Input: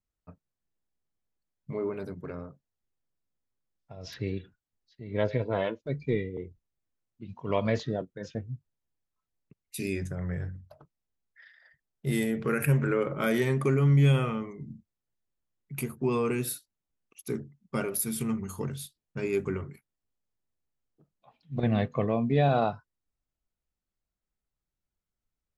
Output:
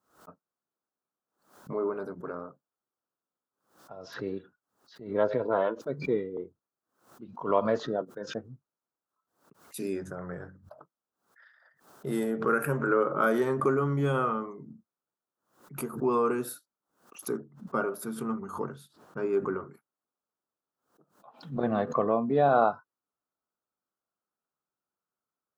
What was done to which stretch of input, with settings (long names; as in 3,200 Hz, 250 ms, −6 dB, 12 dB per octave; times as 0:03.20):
0:17.37–0:19.67: high-shelf EQ 4,900 Hz −11.5 dB
whole clip: high-pass filter 270 Hz 12 dB per octave; high shelf with overshoot 1,700 Hz −8 dB, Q 3; background raised ahead of every attack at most 130 dB per second; level +2 dB